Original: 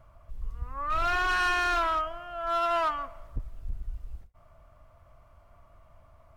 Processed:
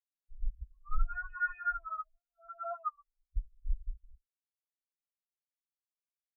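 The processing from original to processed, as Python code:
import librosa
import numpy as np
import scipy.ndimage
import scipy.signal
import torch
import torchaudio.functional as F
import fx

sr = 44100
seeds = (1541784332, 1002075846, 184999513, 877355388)

y = fx.phaser_stages(x, sr, stages=6, low_hz=240.0, high_hz=1300.0, hz=4.0, feedback_pct=15)
y = fx.spectral_expand(y, sr, expansion=4.0)
y = F.gain(torch.from_numpy(y), 2.0).numpy()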